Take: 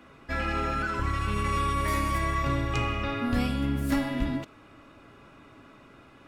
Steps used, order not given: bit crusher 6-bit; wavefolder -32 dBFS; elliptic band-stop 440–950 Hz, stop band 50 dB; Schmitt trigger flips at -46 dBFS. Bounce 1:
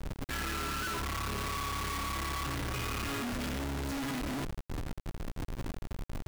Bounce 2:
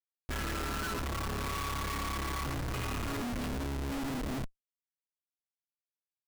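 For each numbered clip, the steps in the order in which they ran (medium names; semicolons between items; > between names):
elliptic band-stop > Schmitt trigger > bit crusher > wavefolder; elliptic band-stop > bit crusher > Schmitt trigger > wavefolder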